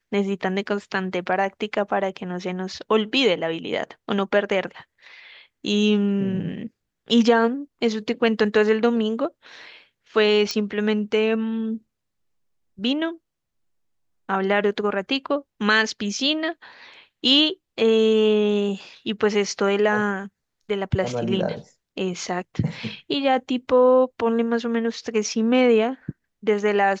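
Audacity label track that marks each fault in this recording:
10.510000	10.510000	pop -11 dBFS

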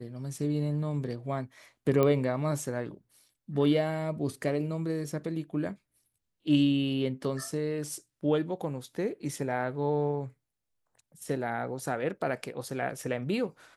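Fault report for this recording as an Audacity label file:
2.030000	2.030000	pop -14 dBFS

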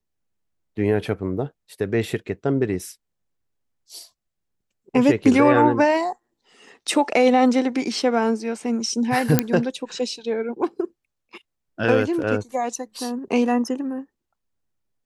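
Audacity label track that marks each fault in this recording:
9.390000	9.390000	pop -1 dBFS

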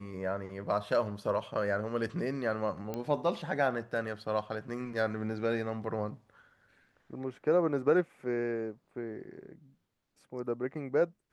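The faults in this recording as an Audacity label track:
2.940000	2.940000	pop -22 dBFS

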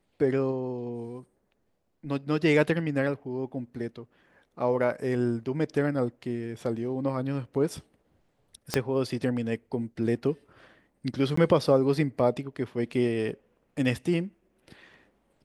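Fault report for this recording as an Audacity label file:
8.740000	8.740000	pop -11 dBFS
11.360000	11.370000	gap 14 ms

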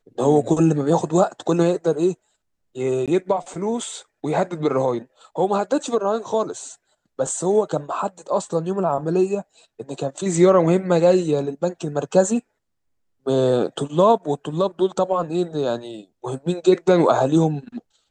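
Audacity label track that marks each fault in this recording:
3.060000	3.080000	gap 17 ms

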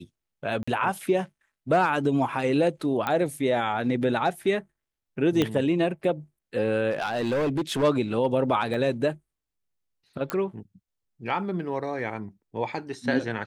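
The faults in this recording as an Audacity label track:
0.630000	0.680000	gap 45 ms
3.070000	3.070000	pop -14 dBFS
5.420000	5.420000	pop -10 dBFS
6.910000	7.840000	clipped -22 dBFS
8.740000	8.740000	gap 2.5 ms
10.300000	10.300000	pop -13 dBFS

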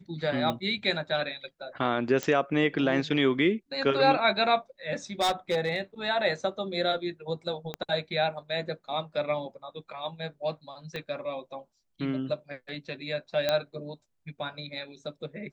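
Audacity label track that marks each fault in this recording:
0.500000	0.500000	pop -17 dBFS
2.230000	2.230000	pop -15 dBFS
5.200000	5.800000	clipped -21.5 dBFS
7.740000	7.740000	pop -19 dBFS
10.960000	10.960000	pop -22 dBFS
13.490000	13.490000	pop -12 dBFS

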